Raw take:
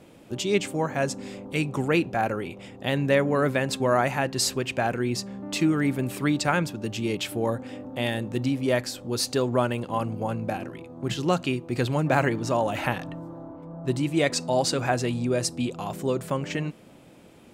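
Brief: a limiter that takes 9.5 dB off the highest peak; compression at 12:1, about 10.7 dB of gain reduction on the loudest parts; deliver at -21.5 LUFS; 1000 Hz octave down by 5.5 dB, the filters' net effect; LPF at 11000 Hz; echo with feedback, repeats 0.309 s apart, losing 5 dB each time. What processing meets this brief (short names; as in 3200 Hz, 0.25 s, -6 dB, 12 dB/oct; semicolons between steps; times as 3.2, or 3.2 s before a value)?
LPF 11000 Hz; bell 1000 Hz -8 dB; compressor 12:1, threshold -29 dBFS; limiter -25 dBFS; feedback echo 0.309 s, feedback 56%, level -5 dB; gain +13 dB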